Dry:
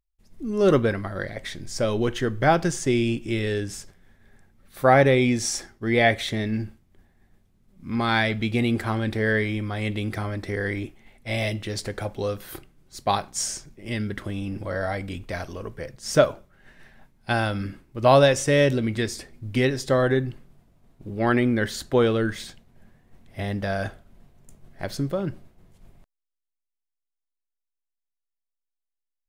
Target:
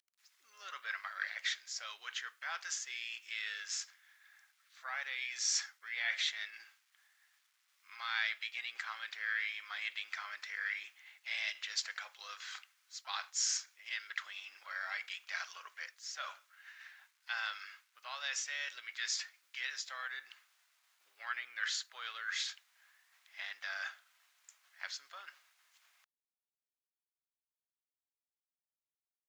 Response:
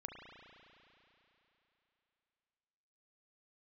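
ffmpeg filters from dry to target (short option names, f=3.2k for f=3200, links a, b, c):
-filter_complex "[0:a]asplit=3[a][b][c];[b]asetrate=35002,aresample=44100,atempo=1.25992,volume=-16dB[d];[c]asetrate=55563,aresample=44100,atempo=0.793701,volume=-16dB[e];[a][d][e]amix=inputs=3:normalize=0,areverse,acompressor=threshold=-30dB:ratio=6,areverse,aresample=16000,aresample=44100,acrusher=bits=11:mix=0:aa=0.000001,highpass=f=1.3k:w=0.5412,highpass=f=1.3k:w=1.3066,volume=1dB"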